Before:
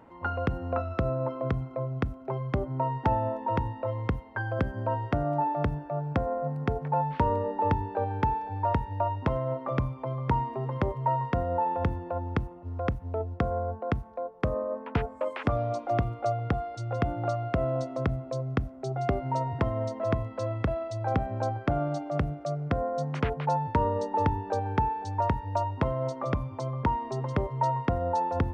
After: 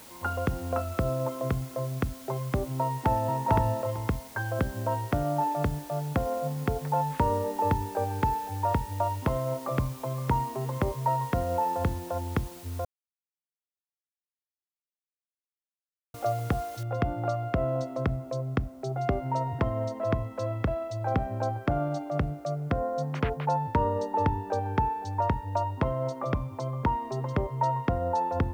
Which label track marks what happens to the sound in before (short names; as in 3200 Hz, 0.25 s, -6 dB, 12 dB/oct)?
2.830000	3.370000	echo throw 0.45 s, feedback 15%, level -0.5 dB
12.850000	16.140000	mute
16.830000	16.830000	noise floor step -50 dB -69 dB